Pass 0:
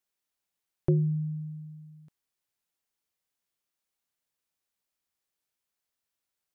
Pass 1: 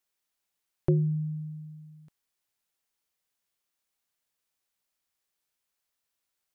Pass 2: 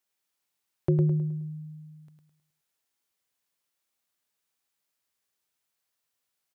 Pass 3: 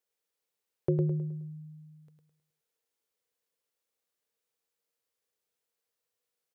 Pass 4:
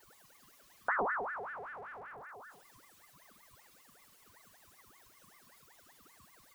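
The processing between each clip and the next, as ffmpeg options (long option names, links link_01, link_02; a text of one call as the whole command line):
ffmpeg -i in.wav -af "equalizer=frequency=160:width=0.32:gain=-3,volume=3dB" out.wav
ffmpeg -i in.wav -af "highpass=68,aecho=1:1:105|210|315|420|525:0.562|0.225|0.09|0.036|0.0144" out.wav
ffmpeg -i in.wav -af "equalizer=frequency=470:width=3.7:gain=15,volume=-5.5dB" out.wav
ffmpeg -i in.wav -af "aeval=exprs='val(0)+0.5*0.0141*sgn(val(0))':channel_layout=same,afftdn=noise_reduction=16:noise_floor=-44,aeval=exprs='val(0)*sin(2*PI*1100*n/s+1100*0.5/5.2*sin(2*PI*5.2*n/s))':channel_layout=same,volume=-3.5dB" out.wav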